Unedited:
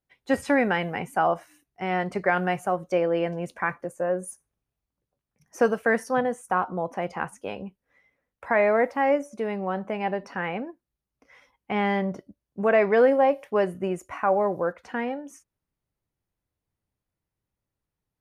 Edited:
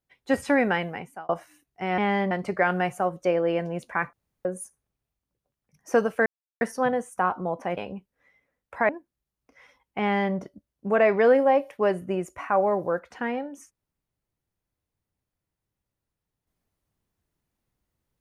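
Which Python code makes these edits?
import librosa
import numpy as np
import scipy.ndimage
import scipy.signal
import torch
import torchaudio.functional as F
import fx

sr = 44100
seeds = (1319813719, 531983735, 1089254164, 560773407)

y = fx.edit(x, sr, fx.fade_out_span(start_s=0.74, length_s=0.55),
    fx.room_tone_fill(start_s=3.8, length_s=0.32),
    fx.insert_silence(at_s=5.93, length_s=0.35),
    fx.cut(start_s=7.09, length_s=0.38),
    fx.cut(start_s=8.59, length_s=2.03),
    fx.duplicate(start_s=11.74, length_s=0.33, to_s=1.98), tone=tone)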